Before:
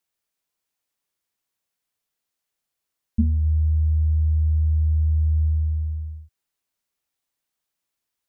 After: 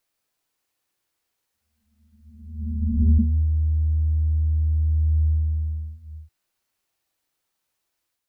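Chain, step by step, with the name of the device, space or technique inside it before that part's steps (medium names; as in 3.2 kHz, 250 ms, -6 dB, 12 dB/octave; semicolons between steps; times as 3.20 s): reverse reverb (reverse; reverberation RT60 1.3 s, pre-delay 87 ms, DRR -5 dB; reverse)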